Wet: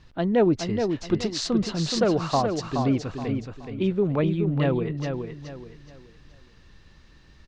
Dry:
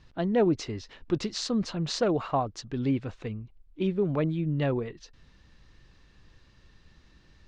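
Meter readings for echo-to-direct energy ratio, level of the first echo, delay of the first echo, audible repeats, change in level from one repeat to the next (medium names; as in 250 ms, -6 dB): -5.5 dB, -6.0 dB, 423 ms, 3, -10.0 dB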